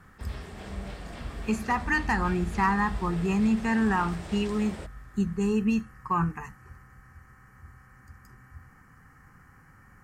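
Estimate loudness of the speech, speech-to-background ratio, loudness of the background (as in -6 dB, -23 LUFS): -27.5 LUFS, 14.5 dB, -42.0 LUFS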